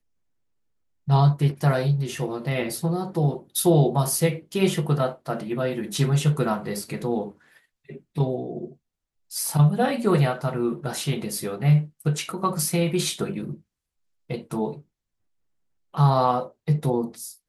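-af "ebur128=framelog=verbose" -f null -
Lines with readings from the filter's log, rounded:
Integrated loudness:
  I:         -24.0 LUFS
  Threshold: -34.5 LUFS
Loudness range:
  LRA:         5.4 LU
  Threshold: -45.1 LUFS
  LRA low:   -28.4 LUFS
  LRA high:  -23.1 LUFS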